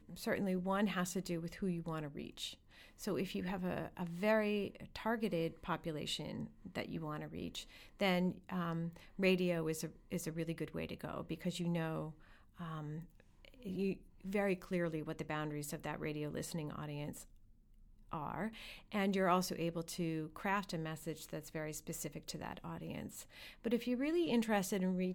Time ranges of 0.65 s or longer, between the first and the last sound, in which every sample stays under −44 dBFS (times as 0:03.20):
0:17.22–0:18.12